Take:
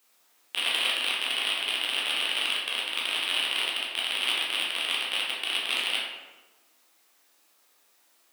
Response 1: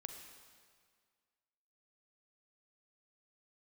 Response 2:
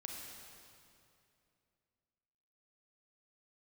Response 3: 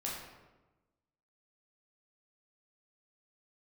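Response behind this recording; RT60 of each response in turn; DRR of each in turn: 3; 1.9, 2.6, 1.1 seconds; 5.0, −0.5, −5.0 decibels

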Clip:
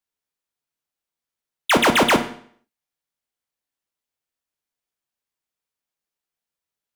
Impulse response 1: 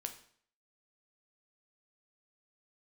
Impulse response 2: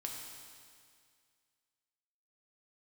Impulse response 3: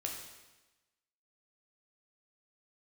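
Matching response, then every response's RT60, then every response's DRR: 1; 0.55, 2.1, 1.1 seconds; 5.5, −0.5, −0.5 decibels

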